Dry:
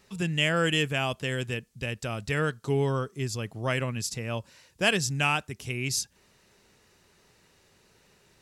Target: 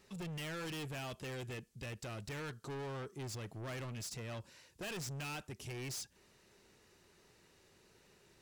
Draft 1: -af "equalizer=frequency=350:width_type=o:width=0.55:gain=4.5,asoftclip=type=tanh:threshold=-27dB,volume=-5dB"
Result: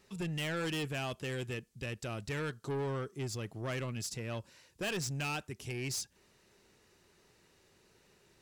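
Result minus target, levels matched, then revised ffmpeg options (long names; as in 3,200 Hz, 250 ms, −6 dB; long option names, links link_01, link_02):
soft clipping: distortion −5 dB
-af "equalizer=frequency=350:width_type=o:width=0.55:gain=4.5,asoftclip=type=tanh:threshold=-36dB,volume=-5dB"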